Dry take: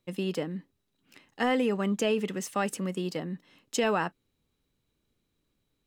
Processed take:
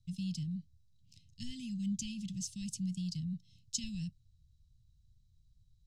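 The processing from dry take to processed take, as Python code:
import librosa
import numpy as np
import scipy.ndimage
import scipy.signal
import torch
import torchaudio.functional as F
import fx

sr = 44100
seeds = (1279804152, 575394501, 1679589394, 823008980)

y = scipy.signal.sosfilt(scipy.signal.cheby2(4, 70, [400.0, 1500.0], 'bandstop', fs=sr, output='sos'), x)
y = fx.spacing_loss(y, sr, db_at_10k=25)
y = y * 10.0 ** (15.5 / 20.0)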